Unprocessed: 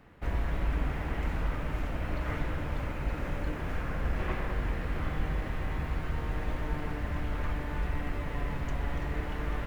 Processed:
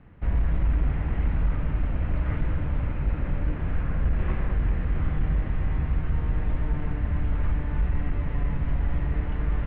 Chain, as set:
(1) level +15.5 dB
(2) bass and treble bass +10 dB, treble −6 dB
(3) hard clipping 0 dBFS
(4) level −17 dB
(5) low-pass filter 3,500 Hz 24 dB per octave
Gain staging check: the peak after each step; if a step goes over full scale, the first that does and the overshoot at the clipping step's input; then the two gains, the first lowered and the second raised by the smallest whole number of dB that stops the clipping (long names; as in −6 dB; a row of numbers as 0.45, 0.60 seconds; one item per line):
−3.0, +6.0, 0.0, −17.0, −17.0 dBFS
step 2, 6.0 dB
step 1 +9.5 dB, step 4 −11 dB